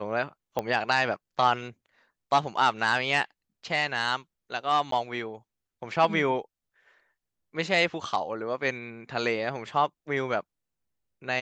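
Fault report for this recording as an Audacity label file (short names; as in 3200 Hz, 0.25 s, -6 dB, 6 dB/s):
0.590000	0.590000	pop -15 dBFS
4.910000	4.920000	gap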